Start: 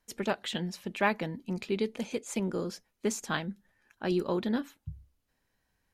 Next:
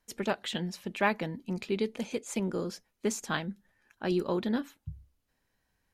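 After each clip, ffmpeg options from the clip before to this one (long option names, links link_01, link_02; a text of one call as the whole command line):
ffmpeg -i in.wav -af anull out.wav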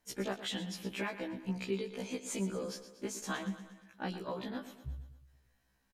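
ffmpeg -i in.wav -af "acompressor=threshold=-34dB:ratio=6,aecho=1:1:118|236|354|472|590:0.237|0.126|0.0666|0.0353|0.0187,afftfilt=real='re*1.73*eq(mod(b,3),0)':imag='im*1.73*eq(mod(b,3),0)':win_size=2048:overlap=0.75,volume=3dB" out.wav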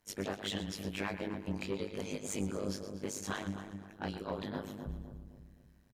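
ffmpeg -i in.wav -filter_complex "[0:a]asoftclip=type=tanh:threshold=-30dB,tremolo=f=100:d=1,asplit=2[link_01][link_02];[link_02]adelay=260,lowpass=frequency=870:poles=1,volume=-6dB,asplit=2[link_03][link_04];[link_04]adelay=260,lowpass=frequency=870:poles=1,volume=0.47,asplit=2[link_05][link_06];[link_06]adelay=260,lowpass=frequency=870:poles=1,volume=0.47,asplit=2[link_07][link_08];[link_08]adelay=260,lowpass=frequency=870:poles=1,volume=0.47,asplit=2[link_09][link_10];[link_10]adelay=260,lowpass=frequency=870:poles=1,volume=0.47,asplit=2[link_11][link_12];[link_12]adelay=260,lowpass=frequency=870:poles=1,volume=0.47[link_13];[link_03][link_05][link_07][link_09][link_11][link_13]amix=inputs=6:normalize=0[link_14];[link_01][link_14]amix=inputs=2:normalize=0,volume=5dB" out.wav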